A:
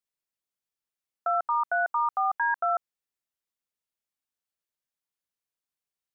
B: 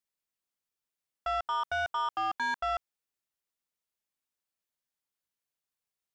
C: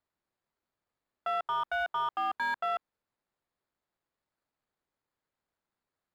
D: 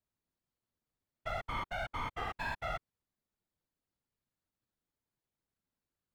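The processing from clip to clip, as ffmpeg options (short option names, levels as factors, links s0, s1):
-af "asoftclip=type=tanh:threshold=0.0447"
-filter_complex "[0:a]highpass=340,acrossover=split=4200[s0][s1];[s1]acrusher=samples=15:mix=1:aa=0.000001[s2];[s0][s2]amix=inputs=2:normalize=0"
-filter_complex "[0:a]lowshelf=f=360:g=7.5,acrossover=split=300|2800[s0][s1][s2];[s1]aeval=exprs='max(val(0),0)':c=same[s3];[s0][s3][s2]amix=inputs=3:normalize=0,afftfilt=real='hypot(re,im)*cos(2*PI*random(0))':imag='hypot(re,im)*sin(2*PI*random(1))':win_size=512:overlap=0.75,volume=1.26"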